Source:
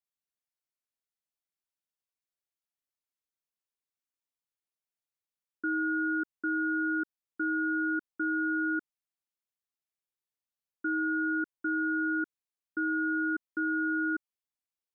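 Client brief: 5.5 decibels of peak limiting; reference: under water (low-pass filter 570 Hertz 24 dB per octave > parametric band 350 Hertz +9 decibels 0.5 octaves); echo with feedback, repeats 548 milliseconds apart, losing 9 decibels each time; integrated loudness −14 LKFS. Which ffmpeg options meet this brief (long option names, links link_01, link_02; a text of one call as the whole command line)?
ffmpeg -i in.wav -af "alimiter=level_in=5dB:limit=-24dB:level=0:latency=1,volume=-5dB,lowpass=frequency=570:width=0.5412,lowpass=frequency=570:width=1.3066,equalizer=frequency=350:width_type=o:width=0.5:gain=9,aecho=1:1:548|1096|1644|2192:0.355|0.124|0.0435|0.0152,volume=19.5dB" out.wav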